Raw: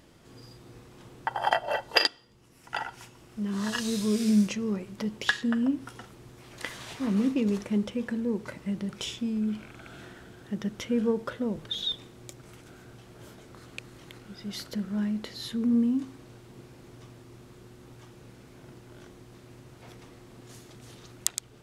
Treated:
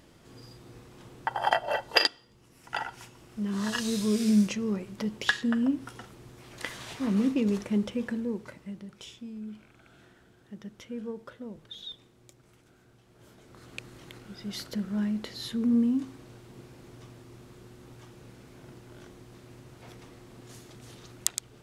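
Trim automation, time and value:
8.07 s 0 dB
8.89 s -11 dB
13.04 s -11 dB
13.77 s 0 dB

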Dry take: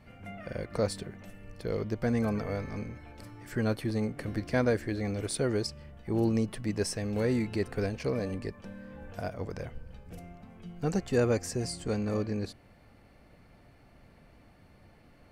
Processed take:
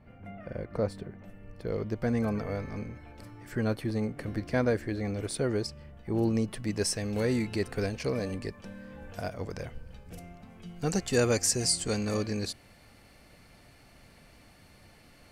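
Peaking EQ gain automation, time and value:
peaking EQ 8.2 kHz 3 oct
1.23 s -13.5 dB
1.96 s -2 dB
6.15 s -2 dB
6.85 s +5.5 dB
10.45 s +5.5 dB
11.29 s +13.5 dB

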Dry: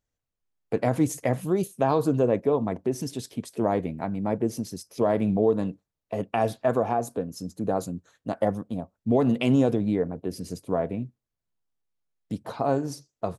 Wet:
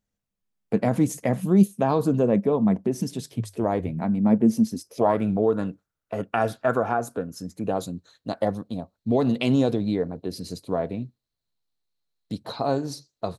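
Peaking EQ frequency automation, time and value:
peaking EQ +15 dB 0.32 oct
3.09 s 200 Hz
3.77 s 63 Hz
4.04 s 220 Hz
4.73 s 220 Hz
5.19 s 1.4 kHz
7.33 s 1.4 kHz
7.90 s 4.1 kHz

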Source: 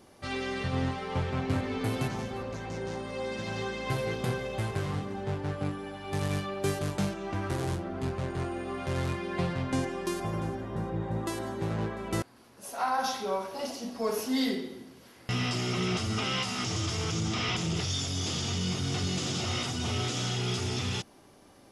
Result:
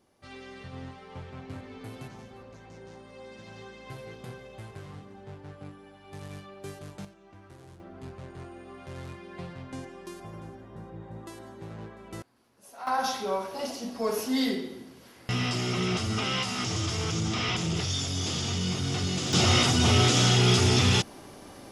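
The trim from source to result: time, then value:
-11.5 dB
from 7.05 s -19 dB
from 7.80 s -10 dB
from 12.87 s +1.5 dB
from 19.33 s +10 dB

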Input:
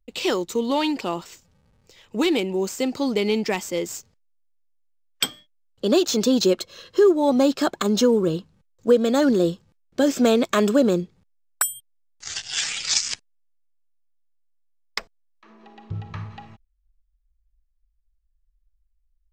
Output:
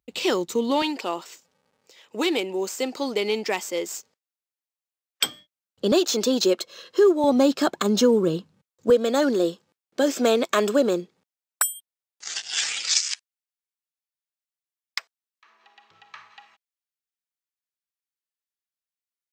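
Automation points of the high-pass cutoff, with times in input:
120 Hz
from 0.82 s 360 Hz
from 5.26 s 100 Hz
from 5.92 s 300 Hz
from 7.24 s 140 Hz
from 8.90 s 320 Hz
from 12.88 s 1.3 kHz

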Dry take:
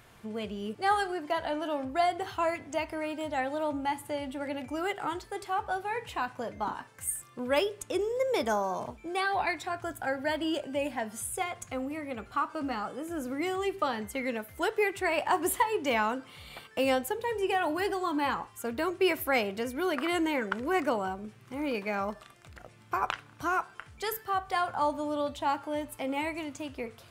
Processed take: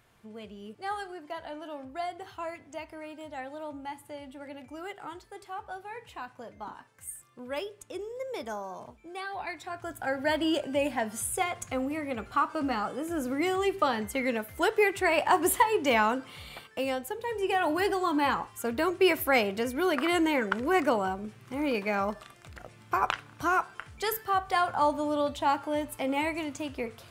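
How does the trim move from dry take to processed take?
9.37 s -8 dB
10.33 s +3.5 dB
16.41 s +3.5 dB
16.93 s -5 dB
17.74 s +3 dB

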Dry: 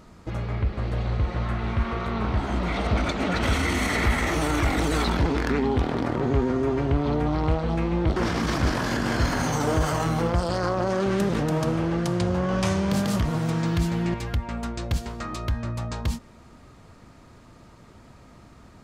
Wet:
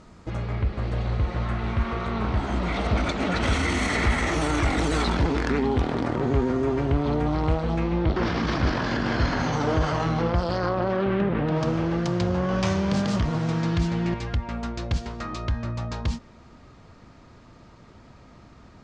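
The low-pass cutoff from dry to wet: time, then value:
low-pass 24 dB/octave
7.63 s 8.9 kHz
8.12 s 5.1 kHz
10.55 s 5.1 kHz
11.36 s 2.6 kHz
11.66 s 6.5 kHz

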